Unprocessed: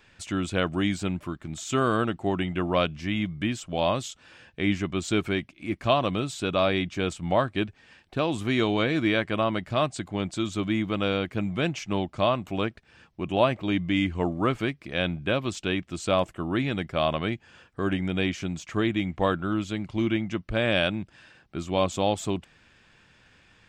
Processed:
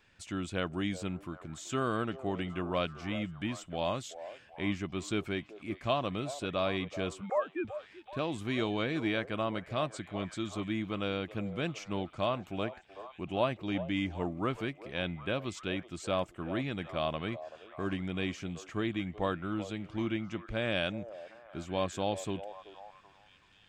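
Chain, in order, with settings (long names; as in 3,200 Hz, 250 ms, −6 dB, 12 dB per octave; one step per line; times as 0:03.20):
0:07.21–0:07.65: three sine waves on the formant tracks
echo through a band-pass that steps 381 ms, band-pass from 580 Hz, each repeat 0.7 octaves, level −10 dB
level −8 dB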